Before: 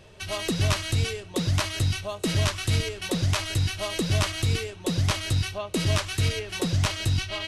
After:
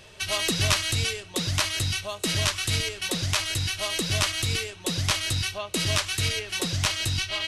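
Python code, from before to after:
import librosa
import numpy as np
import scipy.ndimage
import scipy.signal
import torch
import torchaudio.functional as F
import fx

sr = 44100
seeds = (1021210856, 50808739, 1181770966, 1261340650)

y = fx.tilt_shelf(x, sr, db=-5.0, hz=1100.0)
y = fx.rider(y, sr, range_db=10, speed_s=2.0)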